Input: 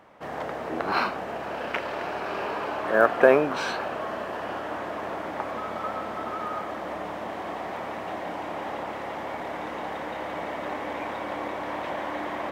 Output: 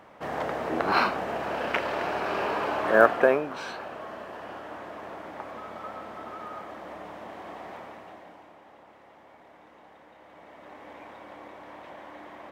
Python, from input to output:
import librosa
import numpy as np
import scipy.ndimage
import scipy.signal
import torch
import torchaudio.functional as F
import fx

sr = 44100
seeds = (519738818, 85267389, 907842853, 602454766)

y = fx.gain(x, sr, db=fx.line((3.02, 2.0), (3.43, -7.5), (7.74, -7.5), (8.61, -20.0), (10.18, -20.0), (10.89, -13.0)))